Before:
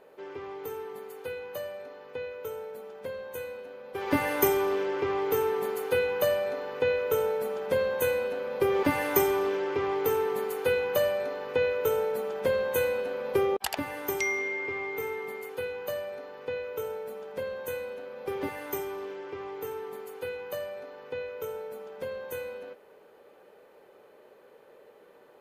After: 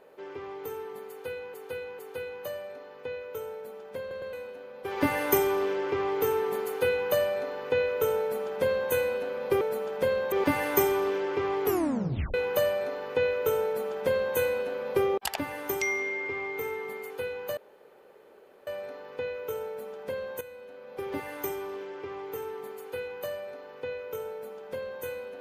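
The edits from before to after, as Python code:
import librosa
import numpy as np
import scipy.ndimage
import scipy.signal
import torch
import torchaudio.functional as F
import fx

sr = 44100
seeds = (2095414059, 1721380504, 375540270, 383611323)

y = fx.edit(x, sr, fx.repeat(start_s=1.09, length_s=0.45, count=3),
    fx.stutter_over(start_s=3.1, slice_s=0.11, count=3),
    fx.tape_stop(start_s=10.03, length_s=0.7),
    fx.duplicate(start_s=12.04, length_s=0.71, to_s=8.71),
    fx.insert_room_tone(at_s=15.96, length_s=1.1),
    fx.fade_in_from(start_s=17.7, length_s=0.9, floor_db=-12.5), tone=tone)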